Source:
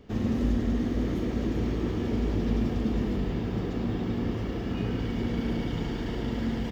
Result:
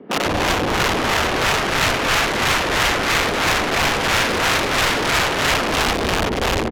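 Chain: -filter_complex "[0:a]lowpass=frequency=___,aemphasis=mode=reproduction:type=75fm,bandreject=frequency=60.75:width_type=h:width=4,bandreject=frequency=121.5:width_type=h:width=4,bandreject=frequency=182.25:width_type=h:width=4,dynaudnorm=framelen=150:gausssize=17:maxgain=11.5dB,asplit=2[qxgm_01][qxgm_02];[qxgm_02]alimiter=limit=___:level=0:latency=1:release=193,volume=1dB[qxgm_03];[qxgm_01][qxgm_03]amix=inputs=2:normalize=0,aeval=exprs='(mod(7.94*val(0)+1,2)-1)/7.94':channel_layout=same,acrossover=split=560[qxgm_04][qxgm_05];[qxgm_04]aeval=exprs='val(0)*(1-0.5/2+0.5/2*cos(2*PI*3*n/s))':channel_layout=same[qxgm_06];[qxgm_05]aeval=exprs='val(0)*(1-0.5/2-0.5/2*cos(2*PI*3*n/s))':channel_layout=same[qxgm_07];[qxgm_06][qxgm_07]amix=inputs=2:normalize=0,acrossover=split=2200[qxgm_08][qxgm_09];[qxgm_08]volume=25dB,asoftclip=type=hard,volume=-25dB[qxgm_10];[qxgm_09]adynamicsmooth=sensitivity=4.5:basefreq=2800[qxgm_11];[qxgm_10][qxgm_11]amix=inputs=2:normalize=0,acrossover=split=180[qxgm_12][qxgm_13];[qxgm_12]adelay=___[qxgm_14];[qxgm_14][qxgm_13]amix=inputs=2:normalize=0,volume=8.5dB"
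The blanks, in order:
5600, -14.5dB, 160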